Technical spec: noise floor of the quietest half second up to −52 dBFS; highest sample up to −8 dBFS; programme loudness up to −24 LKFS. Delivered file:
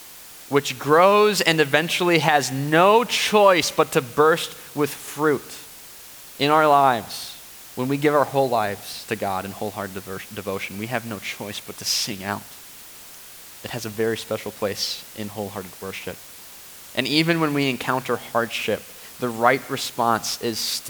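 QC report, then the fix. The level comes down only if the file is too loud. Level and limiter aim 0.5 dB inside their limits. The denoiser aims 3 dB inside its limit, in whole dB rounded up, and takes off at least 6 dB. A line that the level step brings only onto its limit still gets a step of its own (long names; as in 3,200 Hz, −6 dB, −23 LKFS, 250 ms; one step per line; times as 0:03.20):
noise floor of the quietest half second −42 dBFS: out of spec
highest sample −2.0 dBFS: out of spec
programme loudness −21.5 LKFS: out of spec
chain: broadband denoise 10 dB, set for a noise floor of −42 dBFS
level −3 dB
brickwall limiter −8.5 dBFS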